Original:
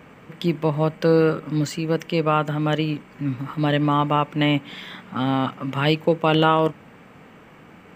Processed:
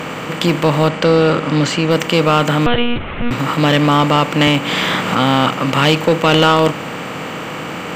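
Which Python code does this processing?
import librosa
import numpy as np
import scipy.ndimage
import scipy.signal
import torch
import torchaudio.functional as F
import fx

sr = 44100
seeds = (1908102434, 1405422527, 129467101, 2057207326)

y = fx.bin_compress(x, sr, power=0.6)
y = fx.high_shelf(y, sr, hz=2200.0, db=6.5)
y = 10.0 ** (-10.0 / 20.0) * np.tanh(y / 10.0 ** (-10.0 / 20.0))
y = fx.air_absorb(y, sr, metres=54.0, at=(0.88, 1.91))
y = fx.lpc_monotone(y, sr, seeds[0], pitch_hz=240.0, order=10, at=(2.66, 3.31))
y = fx.band_squash(y, sr, depth_pct=70, at=(4.47, 5.15))
y = y * 10.0 ** (6.0 / 20.0)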